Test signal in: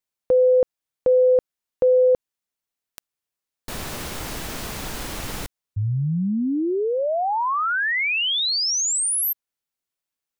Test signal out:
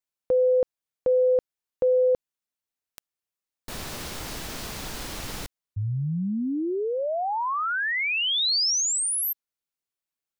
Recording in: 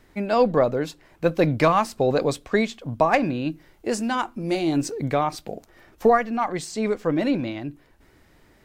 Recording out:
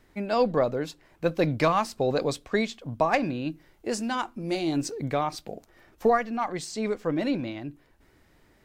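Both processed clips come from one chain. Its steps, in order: dynamic bell 4.7 kHz, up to +4 dB, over -40 dBFS, Q 1.1; trim -4.5 dB

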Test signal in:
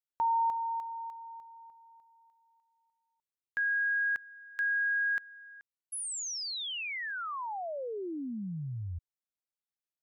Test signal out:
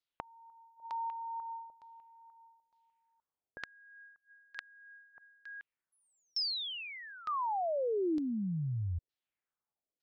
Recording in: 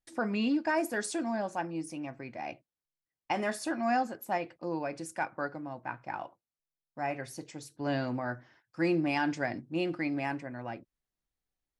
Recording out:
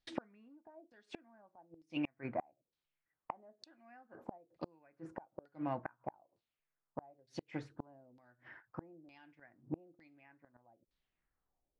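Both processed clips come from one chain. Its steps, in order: LFO low-pass saw down 1.1 Hz 440–4500 Hz; inverted gate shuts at -28 dBFS, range -35 dB; trim +2.5 dB

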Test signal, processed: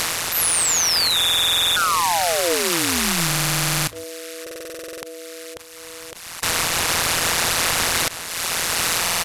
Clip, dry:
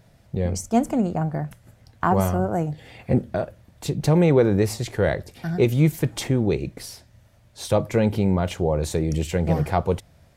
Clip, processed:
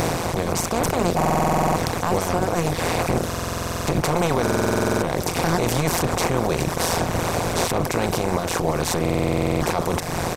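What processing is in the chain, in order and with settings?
spectral levelling over time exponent 0.2; reverb removal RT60 1.2 s; peaking EQ 280 Hz -8.5 dB 2.2 oct; band-stop 3.2 kHz, Q 22; level rider gain up to 8.5 dB; peak limiter -11.5 dBFS; AM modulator 170 Hz, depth 75%; saturation -13 dBFS; echo from a far wall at 71 m, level -20 dB; buffer glitch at 1.16/3.27/4.42/9.01 s, samples 2048, times 12; trim +5 dB

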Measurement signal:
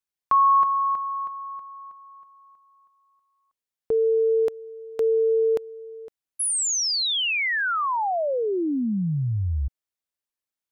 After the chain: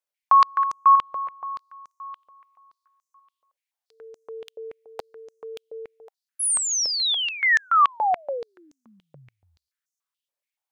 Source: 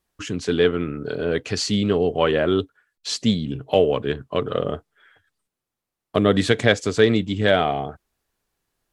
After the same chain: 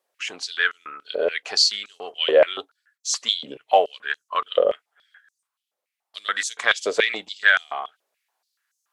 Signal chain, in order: step-sequenced high-pass 7 Hz 550–6300 Hz; trim -1.5 dB

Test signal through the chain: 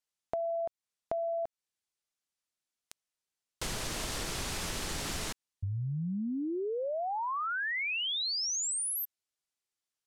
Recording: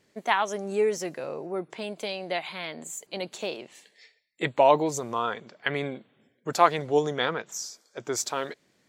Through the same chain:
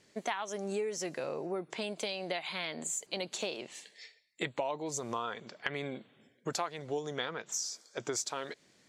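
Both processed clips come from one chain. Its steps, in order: low-pass 8.7 kHz 12 dB/octave; treble shelf 3.7 kHz +7.5 dB; compression 8:1, threshold -32 dBFS

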